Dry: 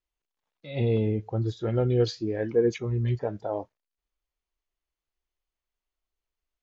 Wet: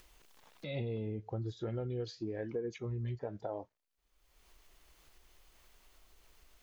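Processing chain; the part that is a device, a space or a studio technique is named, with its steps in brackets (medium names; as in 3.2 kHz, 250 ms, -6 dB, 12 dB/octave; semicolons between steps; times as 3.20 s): upward and downward compression (upward compressor, threshold -41 dBFS; compression 6:1, threshold -36 dBFS, peak gain reduction 17 dB)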